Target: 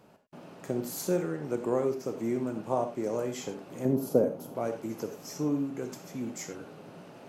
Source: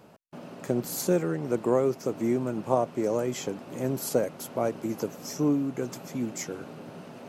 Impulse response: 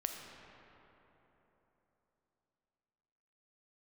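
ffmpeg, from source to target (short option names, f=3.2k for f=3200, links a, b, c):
-filter_complex "[0:a]asettb=1/sr,asplit=3[a][b][c];[a]atrim=end=3.854[d];[b]atrim=start=3.85:end=4.55,asetpts=PTS-STARTPTS,afade=t=in:d=0.004:c=qsin,afade=t=out:st=0.696:d=0.004:c=qsin,equalizer=f=125:t=o:w=1:g=5,equalizer=f=250:t=o:w=1:g=7,equalizer=f=500:t=o:w=1:g=5,equalizer=f=2k:t=o:w=1:g=-9,equalizer=f=4k:t=o:w=1:g=-5,equalizer=f=8k:t=o:w=1:g=-10[e];[c]atrim=start=4.546[f];[d][e]acrossfade=d=0.004:c1=hsin:c2=qsin[g];[g][f]acrossfade=d=0.004:c1=qsin:c2=hsin[h];[1:a]atrim=start_sample=2205,atrim=end_sample=6174,asetrate=57330,aresample=44100[i];[h][i]afir=irnorm=-1:irlink=0,volume=-1.5dB"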